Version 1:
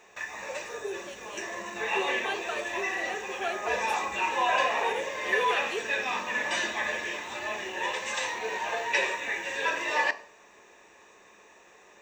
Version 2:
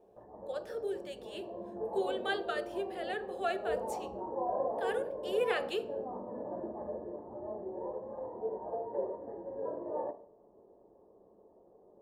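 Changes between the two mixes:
background: add inverse Chebyshev low-pass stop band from 2.2 kHz, stop band 60 dB; master: add peaking EQ 2.4 kHz -6 dB 0.29 oct

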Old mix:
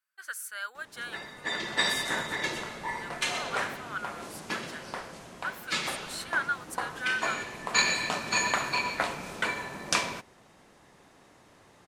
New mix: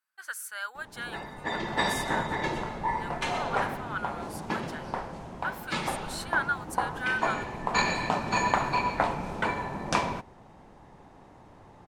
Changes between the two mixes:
background: add tilt EQ -3 dB/octave; master: add peaking EQ 860 Hz +8.5 dB 0.56 oct

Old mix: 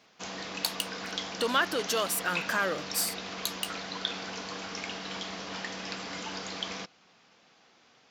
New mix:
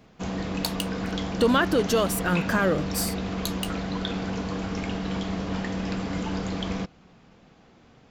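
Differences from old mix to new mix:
background: remove resonant low-pass 5.9 kHz, resonance Q 1.7; master: remove high-pass 1.2 kHz 6 dB/octave

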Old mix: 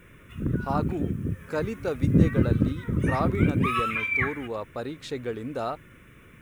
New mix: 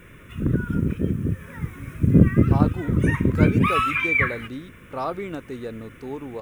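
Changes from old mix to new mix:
speech: entry +1.85 s; background +5.0 dB

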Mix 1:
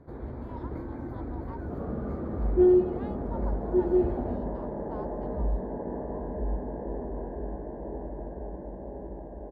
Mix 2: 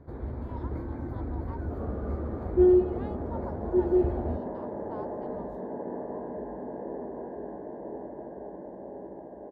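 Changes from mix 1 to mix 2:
second sound: add high-pass 220 Hz 12 dB/octave; master: add peaking EQ 83 Hz +6 dB 0.78 oct

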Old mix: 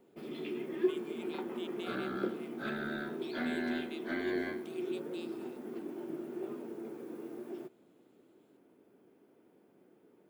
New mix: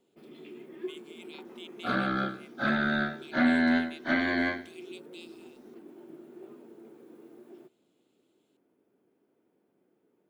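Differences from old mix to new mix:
speech +3.0 dB; first sound -7.5 dB; second sound +12.0 dB

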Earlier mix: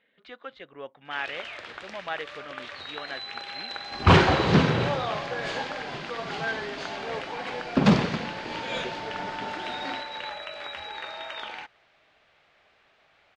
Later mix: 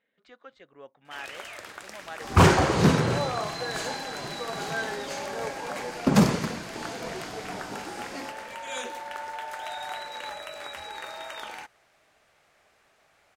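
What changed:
speech -7.0 dB; second sound: entry -1.70 s; master: remove resonant low-pass 3.5 kHz, resonance Q 1.6

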